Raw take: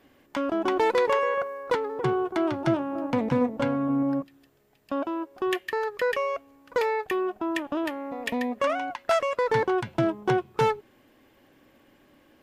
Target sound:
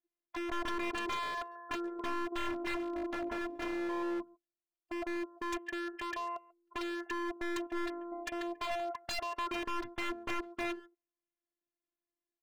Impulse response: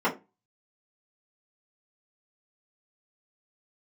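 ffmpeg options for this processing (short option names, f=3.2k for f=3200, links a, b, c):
-filter_complex "[0:a]afftdn=nr=34:nf=-36,highshelf=f=2.5k:g=-3,asplit=2[a][b];[b]adelay=140,highpass=300,lowpass=3.4k,asoftclip=type=hard:threshold=-21dB,volume=-22dB[c];[a][c]amix=inputs=2:normalize=0,afftfilt=real='hypot(re,im)*cos(PI*b)':imag='0':win_size=512:overlap=0.75,aeval=exprs='0.0376*(abs(mod(val(0)/0.0376+3,4)-2)-1)':c=same,volume=-2dB"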